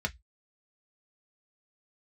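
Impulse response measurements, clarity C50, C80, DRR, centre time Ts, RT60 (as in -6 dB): 26.5 dB, 39.5 dB, 3.0 dB, 4 ms, 0.10 s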